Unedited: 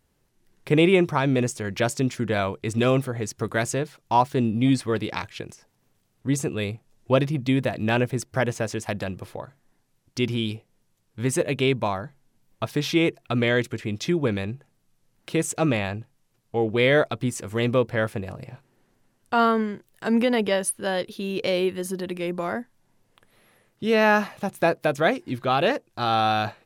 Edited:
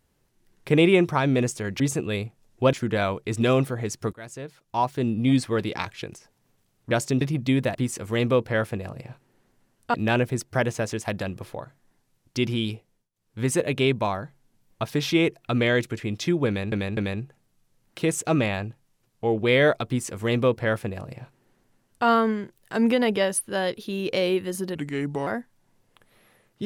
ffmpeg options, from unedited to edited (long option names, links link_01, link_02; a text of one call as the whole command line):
ffmpeg -i in.wav -filter_complex "[0:a]asplit=14[link_01][link_02][link_03][link_04][link_05][link_06][link_07][link_08][link_09][link_10][link_11][link_12][link_13][link_14];[link_01]atrim=end=1.802[link_15];[link_02]atrim=start=6.278:end=7.212[link_16];[link_03]atrim=start=2.098:end=3.5,asetpts=PTS-STARTPTS,afade=type=out:start_time=1.398:duration=0.004:curve=hsin:silence=0.0794328[link_17];[link_04]atrim=start=3.5:end=6.282,asetpts=PTS-STARTPTS,afade=type=in:duration=1.21:silence=0.0794328[link_18];[link_05]atrim=start=1.798:end=2.102[link_19];[link_06]atrim=start=7.208:end=7.752[link_20];[link_07]atrim=start=17.178:end=19.372[link_21];[link_08]atrim=start=7.748:end=10.91,asetpts=PTS-STARTPTS,afade=type=out:start_time=2.792:duration=0.37:curve=qsin:silence=0.0707946[link_22];[link_09]atrim=start=10.91:end=10.93,asetpts=PTS-STARTPTS,volume=-23dB[link_23];[link_10]atrim=start=10.93:end=14.532,asetpts=PTS-STARTPTS,afade=type=in:duration=0.37:curve=qsin:silence=0.0707946[link_24];[link_11]atrim=start=14.278:end=14.532[link_25];[link_12]atrim=start=14.278:end=22.064[link_26];[link_13]atrim=start=22.06:end=22.48,asetpts=PTS-STARTPTS,asetrate=35721,aresample=44100[link_27];[link_14]atrim=start=22.476[link_28];[link_15][link_16]acrossfade=duration=0.004:curve1=hsin:curve2=hsin[link_29];[link_17][link_18]concat=n=2:v=0:a=1[link_30];[link_29][link_30]acrossfade=duration=0.004:curve1=hsin:curve2=hsin[link_31];[link_31][link_19]acrossfade=duration=0.004:curve1=hsin:curve2=hsin[link_32];[link_32][link_20]acrossfade=duration=0.004:curve1=hsin:curve2=hsin[link_33];[link_33][link_21]acrossfade=duration=0.004:curve1=hsin:curve2=hsin[link_34];[link_22][link_23][link_24]concat=n=3:v=0:a=1[link_35];[link_34][link_35]acrossfade=duration=0.004:curve1=hsin:curve2=hsin[link_36];[link_36][link_25]acrossfade=duration=0.004:curve1=hsin:curve2=hsin[link_37];[link_37][link_26]acrossfade=duration=0.004:curve1=hsin:curve2=hsin[link_38];[link_38][link_27]acrossfade=duration=0.004:curve1=hsin:curve2=hsin[link_39];[link_39][link_28]acrossfade=duration=0.004:curve1=hsin:curve2=hsin" out.wav